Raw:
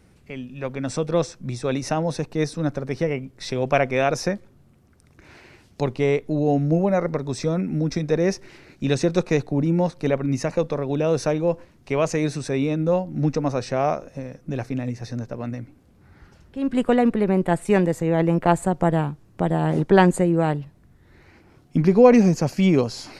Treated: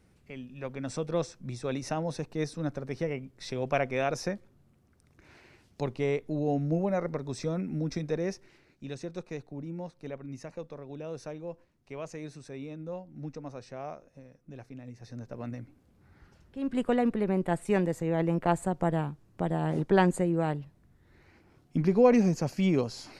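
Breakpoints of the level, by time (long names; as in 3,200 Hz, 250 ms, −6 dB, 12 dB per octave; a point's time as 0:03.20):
0:08.01 −8.5 dB
0:08.91 −18 dB
0:14.82 −18 dB
0:15.41 −8 dB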